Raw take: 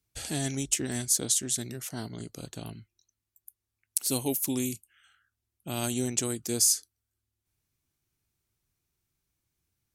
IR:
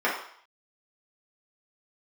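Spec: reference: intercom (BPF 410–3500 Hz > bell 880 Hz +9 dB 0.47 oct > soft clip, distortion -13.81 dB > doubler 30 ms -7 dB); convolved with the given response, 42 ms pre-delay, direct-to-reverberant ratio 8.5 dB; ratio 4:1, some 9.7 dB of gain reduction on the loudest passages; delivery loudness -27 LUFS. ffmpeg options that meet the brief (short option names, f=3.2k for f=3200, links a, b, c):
-filter_complex "[0:a]acompressor=threshold=-31dB:ratio=4,asplit=2[a][b];[1:a]atrim=start_sample=2205,adelay=42[c];[b][c]afir=irnorm=-1:irlink=0,volume=-23.5dB[d];[a][d]amix=inputs=2:normalize=0,highpass=410,lowpass=3.5k,equalizer=f=880:t=o:w=0.47:g=9,asoftclip=threshold=-32.5dB,asplit=2[e][f];[f]adelay=30,volume=-7dB[g];[e][g]amix=inputs=2:normalize=0,volume=16.5dB"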